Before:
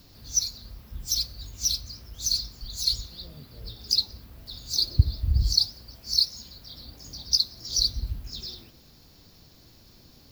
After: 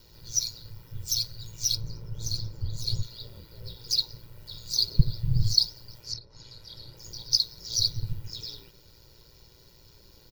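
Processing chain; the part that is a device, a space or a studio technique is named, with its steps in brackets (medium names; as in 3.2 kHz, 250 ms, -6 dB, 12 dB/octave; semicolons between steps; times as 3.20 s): ring-modulated robot voice (ring modulator 58 Hz; comb 2.1 ms, depth 72%); 1.75–3.03 s: tilt shelf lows +8.5 dB, about 1.3 kHz; 6.01–6.97 s: low-pass that closes with the level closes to 790 Hz, closed at -21.5 dBFS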